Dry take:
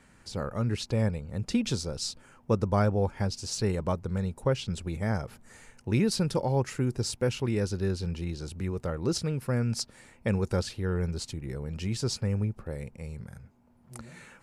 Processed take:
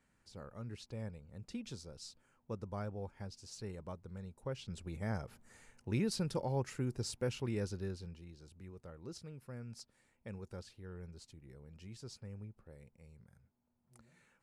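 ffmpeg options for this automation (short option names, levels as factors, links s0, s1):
-af "volume=0.355,afade=t=in:st=4.36:d=0.72:silence=0.398107,afade=t=out:st=7.61:d=0.61:silence=0.298538"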